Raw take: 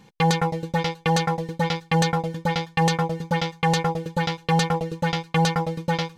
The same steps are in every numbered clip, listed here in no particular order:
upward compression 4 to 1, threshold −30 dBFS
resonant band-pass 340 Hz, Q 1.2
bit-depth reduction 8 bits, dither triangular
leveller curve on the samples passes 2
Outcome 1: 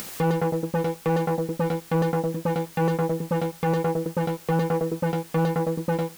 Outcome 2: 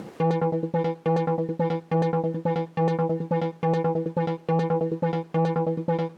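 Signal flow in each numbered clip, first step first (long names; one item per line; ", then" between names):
resonant band-pass, then leveller curve on the samples, then bit-depth reduction, then upward compression
bit-depth reduction, then upward compression, then leveller curve on the samples, then resonant band-pass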